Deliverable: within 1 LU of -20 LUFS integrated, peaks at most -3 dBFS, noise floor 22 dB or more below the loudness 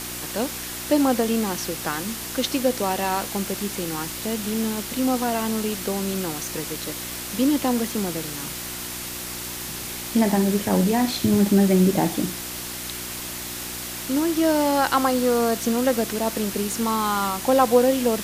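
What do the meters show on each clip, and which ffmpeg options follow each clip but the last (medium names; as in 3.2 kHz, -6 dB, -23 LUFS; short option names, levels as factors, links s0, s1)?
hum 60 Hz; highest harmonic 360 Hz; hum level -40 dBFS; noise floor -33 dBFS; noise floor target -46 dBFS; loudness -23.5 LUFS; peak level -4.5 dBFS; loudness target -20.0 LUFS
-> -af "bandreject=f=60:t=h:w=4,bandreject=f=120:t=h:w=4,bandreject=f=180:t=h:w=4,bandreject=f=240:t=h:w=4,bandreject=f=300:t=h:w=4,bandreject=f=360:t=h:w=4"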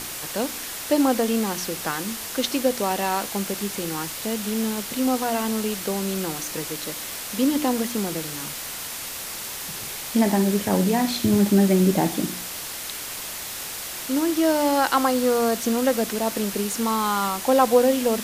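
hum not found; noise floor -33 dBFS; noise floor target -46 dBFS
-> -af "afftdn=nr=13:nf=-33"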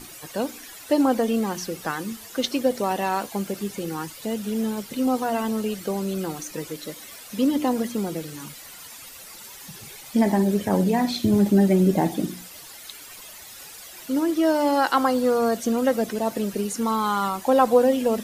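noise floor -43 dBFS; noise floor target -46 dBFS
-> -af "afftdn=nr=6:nf=-43"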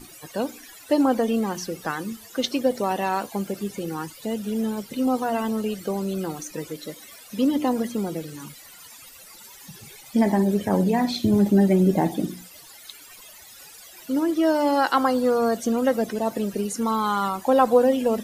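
noise floor -46 dBFS; loudness -23.5 LUFS; peak level -5.0 dBFS; loudness target -20.0 LUFS
-> -af "volume=1.5,alimiter=limit=0.708:level=0:latency=1"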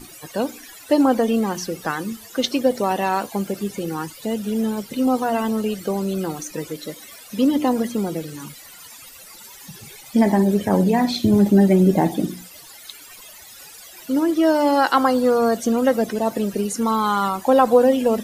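loudness -20.0 LUFS; peak level -3.0 dBFS; noise floor -43 dBFS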